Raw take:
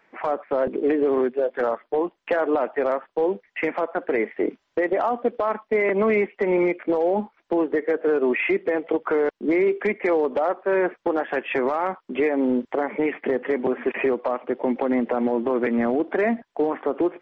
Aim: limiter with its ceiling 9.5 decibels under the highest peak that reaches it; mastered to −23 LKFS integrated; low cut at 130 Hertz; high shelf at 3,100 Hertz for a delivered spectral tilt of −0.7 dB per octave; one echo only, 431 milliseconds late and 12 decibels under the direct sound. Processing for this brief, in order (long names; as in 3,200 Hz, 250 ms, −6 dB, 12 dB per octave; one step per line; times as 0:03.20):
high-pass filter 130 Hz
high-shelf EQ 3,100 Hz −4.5 dB
brickwall limiter −21.5 dBFS
single-tap delay 431 ms −12 dB
level +7.5 dB